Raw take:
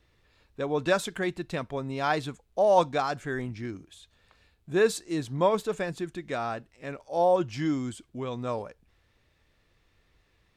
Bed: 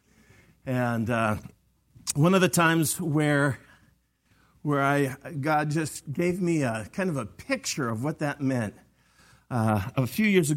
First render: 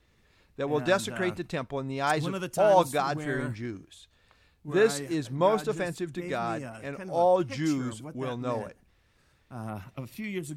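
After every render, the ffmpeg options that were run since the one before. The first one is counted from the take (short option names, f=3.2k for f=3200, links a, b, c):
-filter_complex "[1:a]volume=-13dB[a];[0:a][a]amix=inputs=2:normalize=0"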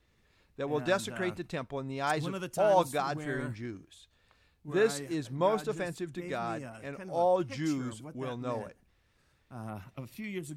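-af "volume=-4dB"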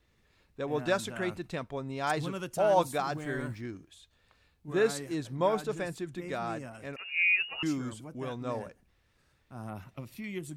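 -filter_complex "[0:a]asettb=1/sr,asplit=3[a][b][c];[a]atrim=end=2.894[d];[b]atrim=start=2.89:end=3.61,asetpts=PTS-STARTPTS,afade=t=in:d=0.004:c=qsin,afade=t=out:st=0.716:d=0.004:c=qsin,aeval=exprs='val(0)*gte(abs(val(0)),0.0015)':c=same[e];[c]atrim=start=3.606[f];[d][e]acrossfade=d=0.004:c1=hsin:c2=qsin[g];[g][f]acrossfade=d=0.004:c1=qsin:c2=hsin,asettb=1/sr,asplit=3[h][i][j];[h]atrim=end=6.964[k];[i]atrim=start=6.96:end=7.63,asetpts=PTS-STARTPTS,afade=t=in:d=0.004:c=qsin,afade=t=out:st=0.666:d=0.004:c=qsin,lowpass=f=2.6k:t=q:w=0.5098,lowpass=f=2.6k:t=q:w=0.6013,lowpass=f=2.6k:t=q:w=0.9,lowpass=f=2.6k:t=q:w=2.563,afreqshift=-3000[l];[j]atrim=start=7.626[m];[k][l]acrossfade=d=0.004:c1=hsin:c2=qsin[n];[n][m]acrossfade=d=0.004:c1=qsin:c2=hsin"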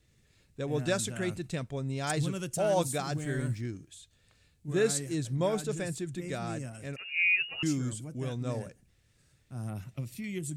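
-af "equalizer=f=125:t=o:w=1:g=8,equalizer=f=1k:t=o:w=1:g=-8,equalizer=f=8k:t=o:w=1:g=10"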